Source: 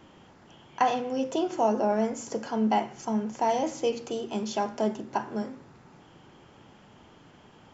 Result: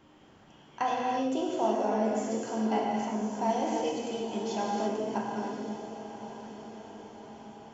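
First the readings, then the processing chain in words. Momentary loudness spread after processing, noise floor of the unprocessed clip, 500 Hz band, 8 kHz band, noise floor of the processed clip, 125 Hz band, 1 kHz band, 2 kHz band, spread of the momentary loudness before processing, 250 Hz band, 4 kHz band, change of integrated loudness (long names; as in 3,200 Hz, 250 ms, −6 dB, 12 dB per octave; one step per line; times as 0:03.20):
17 LU, −55 dBFS, −2.0 dB, can't be measured, −57 dBFS, −2.0 dB, −2.0 dB, −2.0 dB, 9 LU, −1.5 dB, −2.0 dB, −2.5 dB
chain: feedback delay with all-pass diffusion 1,019 ms, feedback 56%, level −11.5 dB
reverb whose tail is shaped and stops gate 360 ms flat, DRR −2 dB
level −6.5 dB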